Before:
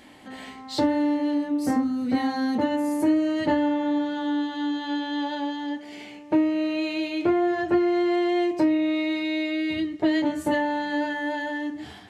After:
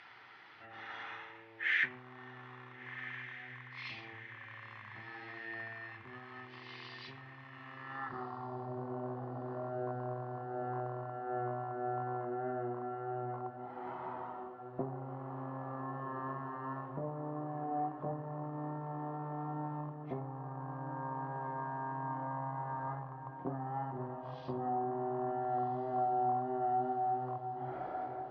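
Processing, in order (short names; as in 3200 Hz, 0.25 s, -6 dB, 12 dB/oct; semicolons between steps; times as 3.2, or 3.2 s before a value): rattling part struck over -36 dBFS, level -30 dBFS; compressor 6:1, threshold -32 dBFS, peak gain reduction 14.5 dB; diffused feedback echo 0.613 s, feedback 61%, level -11 dB; speed mistake 78 rpm record played at 33 rpm; band-pass sweep 2200 Hz -> 640 Hz, 7.75–8.73; gain +8 dB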